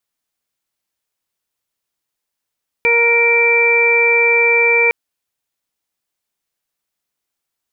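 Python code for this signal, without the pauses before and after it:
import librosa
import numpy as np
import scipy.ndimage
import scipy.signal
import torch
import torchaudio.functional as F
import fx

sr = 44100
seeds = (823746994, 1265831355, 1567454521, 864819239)

y = fx.additive_steady(sr, length_s=2.06, hz=469.0, level_db=-16.0, upper_db=(-7.0, -15, -10.0, 5.0))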